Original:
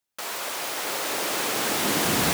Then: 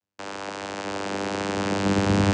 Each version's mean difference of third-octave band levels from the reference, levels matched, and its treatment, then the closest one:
10.5 dB: channel vocoder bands 8, saw 98.8 Hz
level +3 dB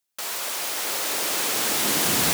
3.0 dB: high-shelf EQ 2,900 Hz +7.5 dB
level −2.5 dB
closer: second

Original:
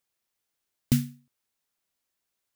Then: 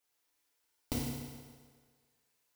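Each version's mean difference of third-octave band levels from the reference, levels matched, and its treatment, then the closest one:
19.0 dB: downward compressor 6 to 1, threshold −29 dBFS, peak gain reduction 11.5 dB
parametric band 150 Hz −10.5 dB 1.1 octaves
feedback delay network reverb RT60 1.7 s, low-frequency decay 0.8×, high-frequency decay 0.85×, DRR −7 dB
level −3.5 dB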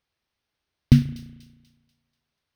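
7.5 dB: Savitzky-Golay smoothing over 15 samples
parametric band 63 Hz +11 dB 2.2 octaves
delay with a high-pass on its return 243 ms, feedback 41%, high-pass 3,400 Hz, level −13.5 dB
spring reverb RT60 1.3 s, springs 34 ms, chirp 65 ms, DRR 13.5 dB
level +4.5 dB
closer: second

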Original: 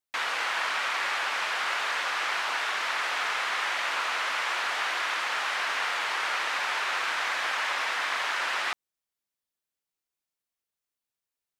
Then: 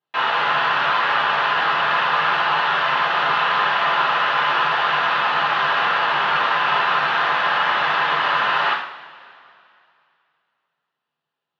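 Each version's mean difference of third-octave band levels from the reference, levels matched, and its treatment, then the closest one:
9.5 dB: in parallel at −4.5 dB: sine wavefolder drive 9 dB, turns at −16 dBFS
on the sum: loudspeaker in its box 150–3,300 Hz, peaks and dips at 150 Hz +6 dB, 1,000 Hz +3 dB, 2,200 Hz −9 dB
coupled-rooms reverb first 0.57 s, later 2.6 s, from −18 dB, DRR −6 dB
level −4.5 dB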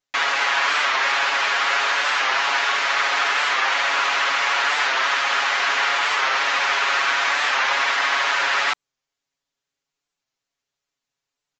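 4.0 dB: downsampling to 16,000 Hz
comb filter 7.2 ms, depth 95%
wow of a warped record 45 rpm, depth 100 cents
level +6 dB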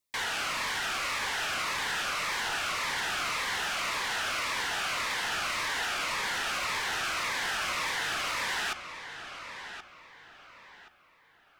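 7.0 dB: soft clipping −32.5 dBFS, distortion −9 dB
on a send: feedback echo with a low-pass in the loop 1,076 ms, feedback 34%, low-pass 4,100 Hz, level −9.5 dB
on the sum: phaser whose notches keep moving one way falling 1.8 Hz
level +5.5 dB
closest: second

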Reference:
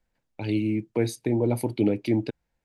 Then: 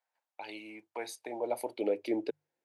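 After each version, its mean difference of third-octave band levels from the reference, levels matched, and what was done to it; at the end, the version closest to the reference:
7.0 dB: mains-hum notches 50/100/150 Hz
high-pass filter sweep 820 Hz → 350 Hz, 0:01.04–0:02.62
level −7 dB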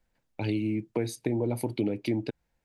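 1.5 dB: downward compressor 4 to 1, threshold −27 dBFS, peak gain reduction 8.5 dB
level +1.5 dB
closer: second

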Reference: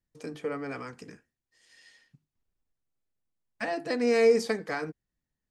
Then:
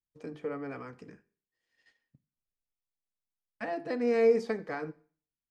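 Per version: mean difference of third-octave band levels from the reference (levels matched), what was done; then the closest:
2.5 dB: noise gate −56 dBFS, range −12 dB
low-pass filter 1,600 Hz 6 dB per octave
four-comb reverb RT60 0.46 s, combs from 31 ms, DRR 18.5 dB
level −2.5 dB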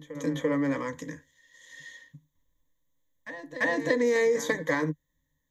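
5.0 dB: EQ curve with evenly spaced ripples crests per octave 1.1, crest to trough 17 dB
downward compressor 6 to 1, threshold −26 dBFS, peak gain reduction 10 dB
backwards echo 341 ms −14 dB
level +4.5 dB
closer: first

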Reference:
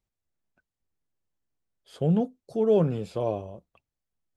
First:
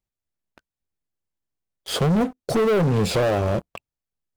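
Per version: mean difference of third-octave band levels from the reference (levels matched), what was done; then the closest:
12.0 dB: downward compressor 8 to 1, threshold −33 dBFS, peak gain reduction 16 dB
leveller curve on the samples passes 5
level +6.5 dB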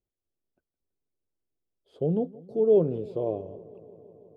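5.5 dB: drawn EQ curve 210 Hz 0 dB, 380 Hz +9 dB, 1,800 Hz −14 dB, 3,500 Hz −6 dB, 6,100 Hz −15 dB
on a send: delay with a low-pass on its return 164 ms, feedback 81%, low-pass 2,100 Hz, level −22 dB
on the sum: level −5 dB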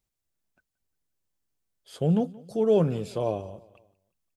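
2.0 dB: high-shelf EQ 4,000 Hz +7.5 dB
on a send: repeating echo 176 ms, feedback 48%, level −22 dB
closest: third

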